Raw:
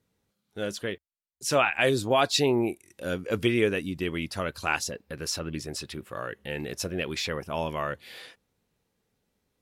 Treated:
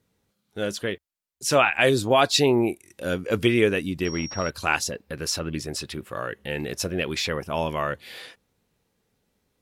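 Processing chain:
0:04.05–0:04.50: switching amplifier with a slow clock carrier 5,600 Hz
level +4 dB

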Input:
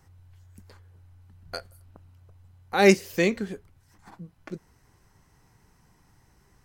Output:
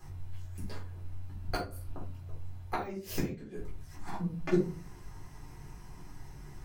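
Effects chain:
de-essing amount 80%
gate with flip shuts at −22 dBFS, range −31 dB
rectangular room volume 190 cubic metres, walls furnished, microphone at 3.9 metres

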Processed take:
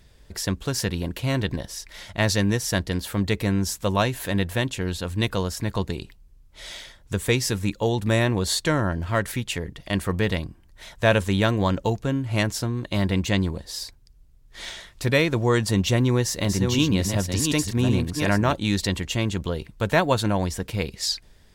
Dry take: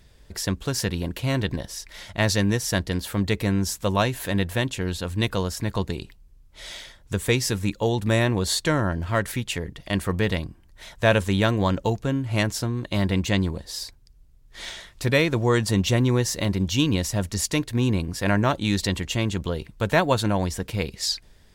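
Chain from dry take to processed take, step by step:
0:16.05–0:18.53: delay that plays each chunk backwards 368 ms, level −4.5 dB

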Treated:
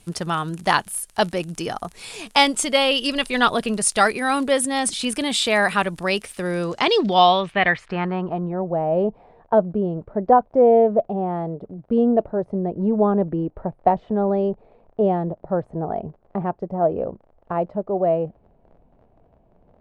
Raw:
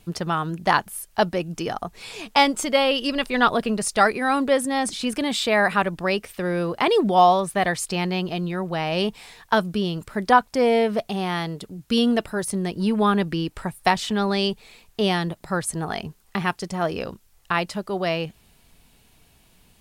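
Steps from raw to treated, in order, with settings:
surface crackle 37 per second −30 dBFS
low-pass filter sweep 10,000 Hz → 630 Hz, 0:06.47–0:08.68
dynamic equaliser 3,200 Hz, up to +4 dB, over −35 dBFS, Q 1.4

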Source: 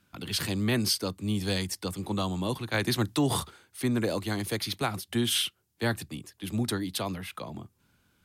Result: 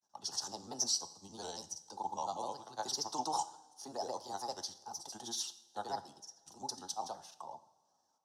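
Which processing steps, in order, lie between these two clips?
granular cloud, pitch spread up and down by 3 semitones
pair of resonant band-passes 2,200 Hz, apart 2.8 octaves
coupled-rooms reverb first 0.68 s, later 2.7 s, from −18 dB, DRR 11 dB
level +5.5 dB

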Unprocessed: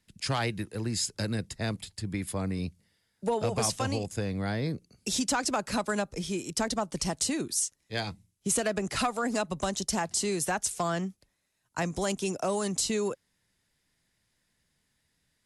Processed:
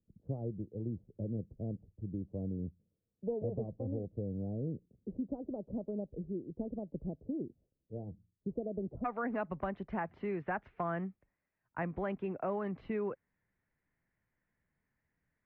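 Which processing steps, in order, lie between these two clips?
Butterworth low-pass 570 Hz 36 dB per octave, from 0:09.04 2,200 Hz
level −6 dB

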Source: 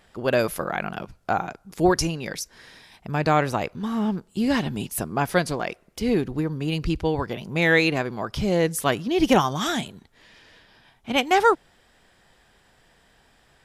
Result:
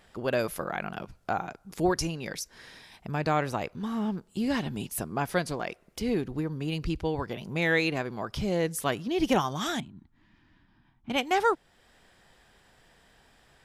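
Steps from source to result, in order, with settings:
0:09.80–0:11.10: drawn EQ curve 320 Hz 0 dB, 460 Hz −24 dB, 970 Hz −8 dB, 12,000 Hz −27 dB
in parallel at 0 dB: downward compressor, threshold −35 dBFS, peak gain reduction 21 dB
on the sum: level −7.5 dB

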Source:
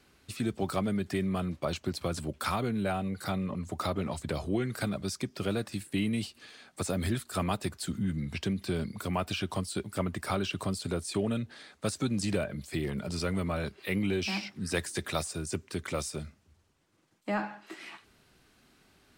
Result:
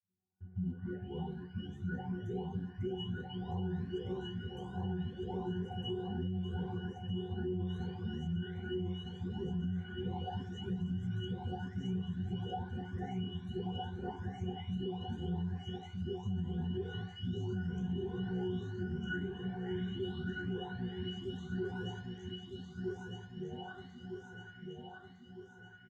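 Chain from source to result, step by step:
every frequency bin delayed by itself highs late, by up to 973 ms
in parallel at −6.5 dB: floating-point word with a short mantissa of 2 bits
on the sum: noise gate with hold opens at −45 dBFS
resonances in every octave B, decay 0.18 s
repeating echo 931 ms, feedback 49%, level −4 dB
on a send at −14.5 dB: convolution reverb RT60 0.60 s, pre-delay 7 ms
on the sum: brickwall limiter −36.5 dBFS, peak gain reduction 11.5 dB
wrong playback speed 45 rpm record played at 33 rpm
high-pass filter 73 Hz
high-shelf EQ 11,000 Hz +10 dB
level +7.5 dB

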